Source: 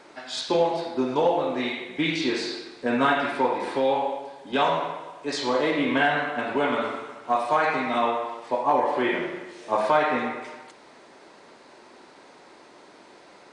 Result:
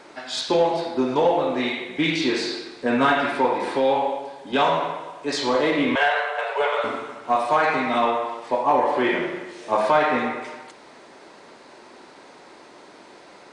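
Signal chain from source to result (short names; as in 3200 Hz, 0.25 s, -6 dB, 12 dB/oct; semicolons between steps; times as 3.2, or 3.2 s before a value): 5.95–6.84 Chebyshev high-pass 420 Hz, order 10; in parallel at -5.5 dB: soft clip -19.5 dBFS, distortion -13 dB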